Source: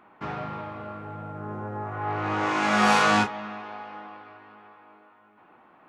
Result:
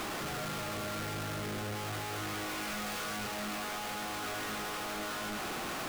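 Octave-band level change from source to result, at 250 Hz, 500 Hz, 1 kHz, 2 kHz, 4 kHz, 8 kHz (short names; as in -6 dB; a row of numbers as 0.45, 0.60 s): -9.5, -7.5, -11.5, -9.5, -4.0, +0.5 dB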